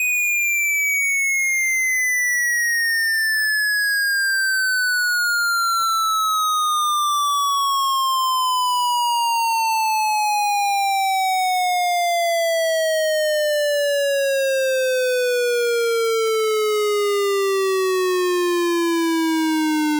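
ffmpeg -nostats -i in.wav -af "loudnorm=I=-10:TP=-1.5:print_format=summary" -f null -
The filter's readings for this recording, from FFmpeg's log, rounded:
Input Integrated:    -18.5 LUFS
Input True Peak:     -18.1 dBTP
Input LRA:             2.3 LU
Input Threshold:     -28.5 LUFS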